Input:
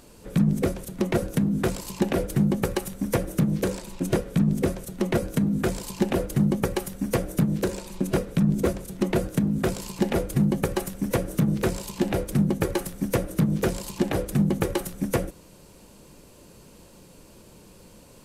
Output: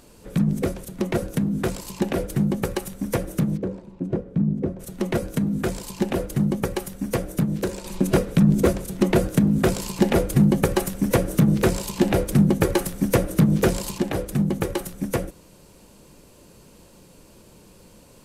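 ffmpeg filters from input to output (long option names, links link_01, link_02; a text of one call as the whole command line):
ffmpeg -i in.wav -filter_complex "[0:a]asplit=3[link_01][link_02][link_03];[link_01]afade=type=out:start_time=3.56:duration=0.02[link_04];[link_02]bandpass=frequency=190:width_type=q:width=0.51,afade=type=in:start_time=3.56:duration=0.02,afade=type=out:start_time=4.79:duration=0.02[link_05];[link_03]afade=type=in:start_time=4.79:duration=0.02[link_06];[link_04][link_05][link_06]amix=inputs=3:normalize=0,asettb=1/sr,asplit=3[link_07][link_08][link_09];[link_07]atrim=end=7.844[link_10];[link_08]atrim=start=7.84:end=13.98,asetpts=PTS-STARTPTS,afade=type=in:duration=0.004:curve=qsin,afade=type=out:start_time=6.136:duration=0.004:curve=qsin,acontrast=33[link_11];[link_09]atrim=start=13.976[link_12];[link_10][link_11]acrossfade=duration=0.004:curve1=hsin:curve2=qsin[link_13];[link_13][link_12]acrossfade=duration=0.004:curve1=qsin:curve2=hsin" out.wav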